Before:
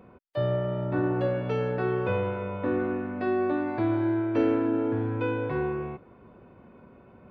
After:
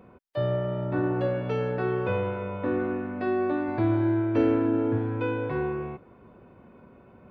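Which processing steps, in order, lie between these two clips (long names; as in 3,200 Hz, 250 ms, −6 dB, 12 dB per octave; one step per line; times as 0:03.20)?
0:03.68–0:04.98: low-shelf EQ 140 Hz +8.5 dB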